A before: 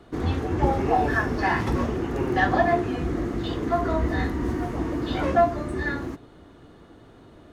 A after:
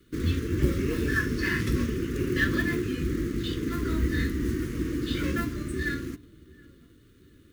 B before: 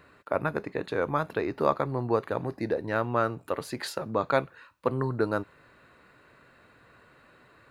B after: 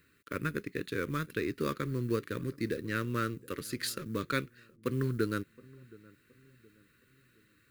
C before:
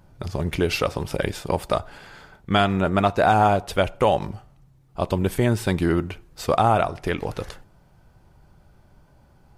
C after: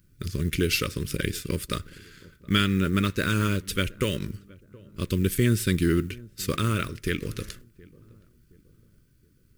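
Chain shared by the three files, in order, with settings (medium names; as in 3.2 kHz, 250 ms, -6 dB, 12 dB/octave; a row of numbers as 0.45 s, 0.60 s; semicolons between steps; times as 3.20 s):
companding laws mixed up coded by A; Butterworth band-stop 770 Hz, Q 0.68; treble shelf 7.3 kHz +10.5 dB; on a send: filtered feedback delay 720 ms, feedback 42%, low-pass 890 Hz, level -22 dB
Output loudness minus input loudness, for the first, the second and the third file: -3.5 LU, -5.5 LU, -4.0 LU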